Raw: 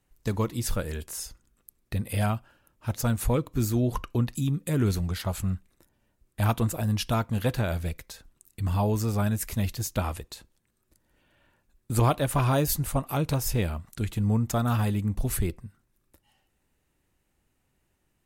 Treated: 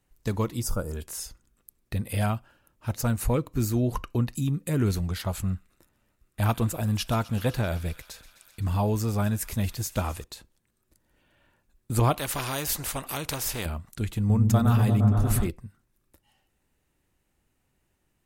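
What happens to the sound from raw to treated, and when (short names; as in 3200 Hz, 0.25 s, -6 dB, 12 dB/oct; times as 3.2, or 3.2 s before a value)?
0.62–0.97 spectral gain 1500–4600 Hz -15 dB
2.89–4.93 notch 3400 Hz
5.44–10.24 thin delay 0.128 s, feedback 82%, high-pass 1800 Hz, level -17 dB
12.16–13.66 spectral compressor 2:1
14.18–15.48 repeats that get brighter 0.116 s, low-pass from 200 Hz, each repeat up 1 oct, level 0 dB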